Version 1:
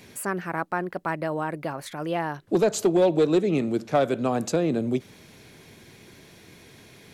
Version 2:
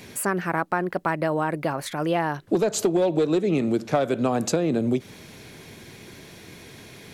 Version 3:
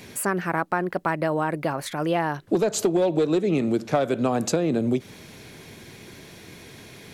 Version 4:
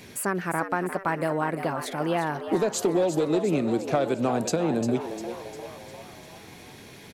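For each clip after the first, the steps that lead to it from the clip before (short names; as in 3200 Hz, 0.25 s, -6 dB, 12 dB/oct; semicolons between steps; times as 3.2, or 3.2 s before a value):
compressor 5:1, threshold -24 dBFS, peak gain reduction 8 dB; gain +5.5 dB
nothing audible
frequency-shifting echo 0.351 s, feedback 54%, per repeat +99 Hz, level -10 dB; gain -2.5 dB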